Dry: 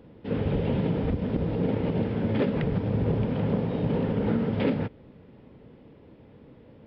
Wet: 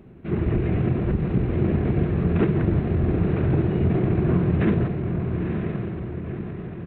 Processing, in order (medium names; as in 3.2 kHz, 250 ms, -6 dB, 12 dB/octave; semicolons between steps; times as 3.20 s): echo that smears into a reverb 968 ms, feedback 50%, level -5 dB; pitch shift -4.5 st; trim +4 dB